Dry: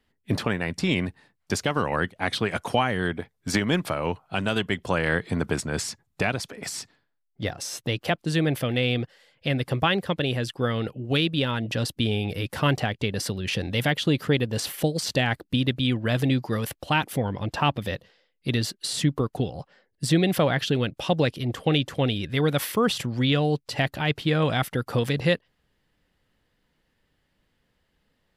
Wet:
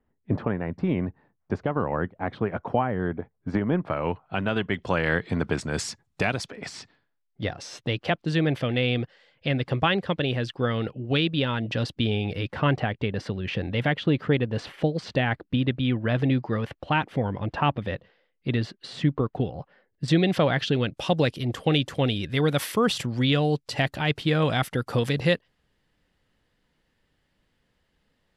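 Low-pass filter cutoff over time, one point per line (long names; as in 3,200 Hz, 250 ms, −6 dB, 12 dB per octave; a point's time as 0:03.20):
1,100 Hz
from 0:03.90 2,500 Hz
from 0:04.74 4,500 Hz
from 0:05.61 8,500 Hz
from 0:06.46 4,200 Hz
from 0:12.51 2,500 Hz
from 0:20.08 5,400 Hz
from 0:20.91 11,000 Hz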